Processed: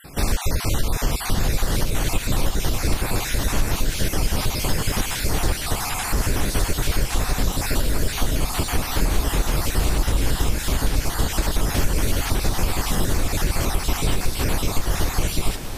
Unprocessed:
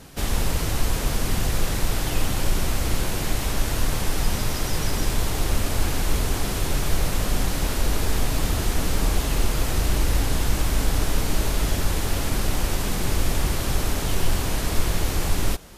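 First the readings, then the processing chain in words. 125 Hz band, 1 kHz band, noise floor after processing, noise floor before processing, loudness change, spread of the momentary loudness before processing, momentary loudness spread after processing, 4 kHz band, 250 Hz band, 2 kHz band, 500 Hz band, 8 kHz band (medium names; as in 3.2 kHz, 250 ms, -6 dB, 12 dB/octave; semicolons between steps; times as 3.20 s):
+1.5 dB, +2.5 dB, -29 dBFS, -27 dBFS, +1.5 dB, 2 LU, 1 LU, +2.0 dB, +1.5 dB, +2.5 dB, +1.5 dB, +2.0 dB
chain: random holes in the spectrogram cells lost 36%; compression, threshold -21 dBFS, peak gain reduction 9.5 dB; echo that smears into a reverb 1256 ms, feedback 64%, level -10.5 dB; trim +6 dB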